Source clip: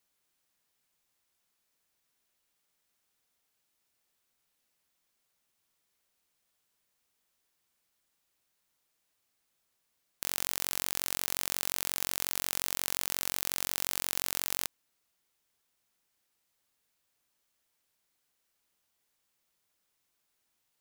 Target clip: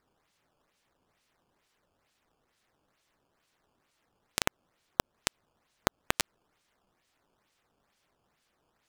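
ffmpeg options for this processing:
-af "acrusher=samples=30:mix=1:aa=0.000001:lfo=1:lforange=48:lforate=0.95,asetrate=103194,aresample=44100,acompressor=threshold=-25dB:ratio=6,volume=3dB"

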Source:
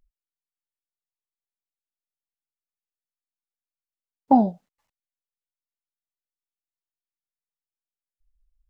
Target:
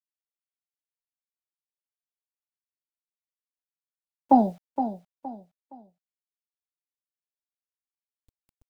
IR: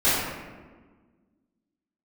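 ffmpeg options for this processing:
-filter_complex "[0:a]acrossover=split=140|210|470[a][b][c][d];[b]acompressor=threshold=-40dB:ratio=6[e];[a][e][c][d]amix=inputs=4:normalize=0,acrusher=bits=9:mix=0:aa=0.000001,aecho=1:1:467|934|1401:0.316|0.098|0.0304"

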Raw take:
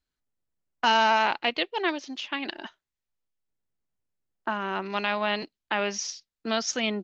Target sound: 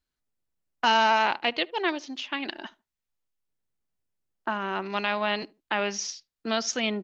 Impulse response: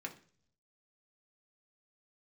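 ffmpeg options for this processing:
-filter_complex "[0:a]asplit=2[a][b];[b]adelay=75,lowpass=f=1.2k:p=1,volume=-22dB,asplit=2[c][d];[d]adelay=75,lowpass=f=1.2k:p=1,volume=0.25[e];[a][c][e]amix=inputs=3:normalize=0"

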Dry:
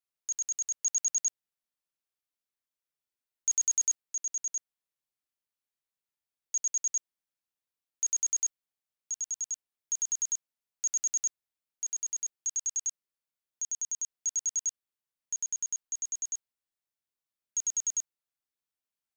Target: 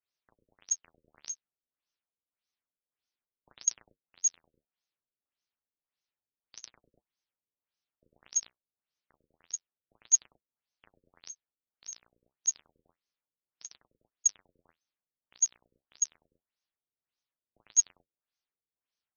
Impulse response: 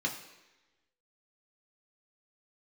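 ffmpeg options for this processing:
-af "flanger=delay=6.9:depth=9.6:regen=-52:speed=0.29:shape=triangular,aemphasis=mode=production:type=75fm,afftfilt=real='re*lt(b*sr/1024,530*pow(6700/530,0.5+0.5*sin(2*PI*1.7*pts/sr)))':imag='im*lt(b*sr/1024,530*pow(6700/530,0.5+0.5*sin(2*PI*1.7*pts/sr)))':win_size=1024:overlap=0.75,volume=4.5dB"

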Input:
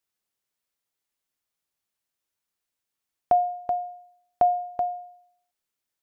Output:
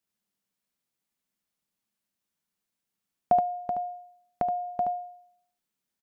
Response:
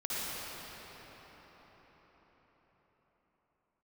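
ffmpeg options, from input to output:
-filter_complex "[0:a]equalizer=f=200:t=o:w=0.82:g=12.5,aecho=1:1:74:0.596,asettb=1/sr,asplit=3[a][b][c];[a]atrim=end=3.394[d];[b]atrim=start=3.39:end=4.68,asetpts=PTS-STARTPTS,afade=t=in:d=0.004:c=qsin,afade=t=out:st=1.286:d=0.004:c=qsin,acompressor=threshold=-25dB:ratio=3[e];[c]atrim=start=4.676[f];[d][e]acrossfade=d=0.004:c1=hsin:c2=qsin[g];[g][f]acrossfade=d=0.004:c1=qsin:c2=hsin,volume=-2.5dB"

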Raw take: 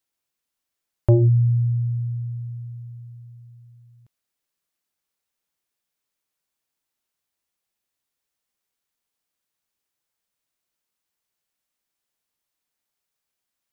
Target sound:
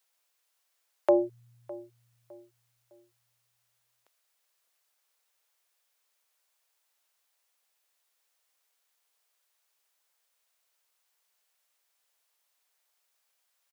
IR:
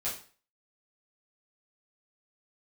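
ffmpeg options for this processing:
-filter_complex "[0:a]highpass=f=480:w=0.5412,highpass=f=480:w=1.3066,asplit=2[a][b];[b]adelay=608,lowpass=f=950:p=1,volume=-18dB,asplit=2[c][d];[d]adelay=608,lowpass=f=950:p=1,volume=0.39,asplit=2[e][f];[f]adelay=608,lowpass=f=950:p=1,volume=0.39[g];[c][e][g]amix=inputs=3:normalize=0[h];[a][h]amix=inputs=2:normalize=0,volume=6.5dB"

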